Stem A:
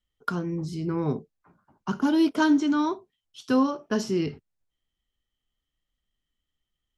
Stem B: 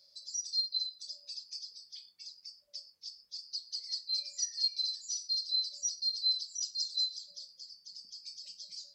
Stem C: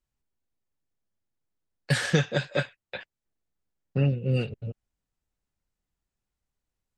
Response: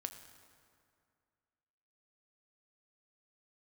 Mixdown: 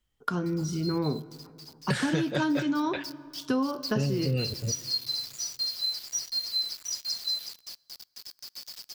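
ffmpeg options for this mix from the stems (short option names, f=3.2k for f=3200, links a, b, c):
-filter_complex "[0:a]volume=-1dB,asplit=2[a][b];[b]volume=-5.5dB[c];[1:a]equalizer=f=5.2k:w=0.42:g=10,acrusher=bits=5:mix=0:aa=0.000001,adelay=300,volume=-8dB,afade=t=in:st=2.22:d=0.34:silence=0.334965,asplit=2[d][e];[e]volume=-13dB[f];[2:a]volume=1dB,asplit=2[g][h];[h]volume=-9dB[i];[3:a]atrim=start_sample=2205[j];[c][f][i]amix=inputs=3:normalize=0[k];[k][j]afir=irnorm=-1:irlink=0[l];[a][d][g][l]amix=inputs=4:normalize=0,acompressor=threshold=-24dB:ratio=6"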